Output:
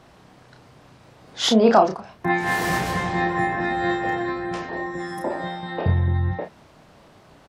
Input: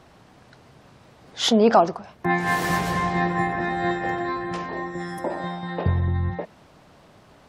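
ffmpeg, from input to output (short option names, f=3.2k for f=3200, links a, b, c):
-filter_complex "[0:a]asplit=2[a][b];[b]adelay=32,volume=-5dB[c];[a][c]amix=inputs=2:normalize=0"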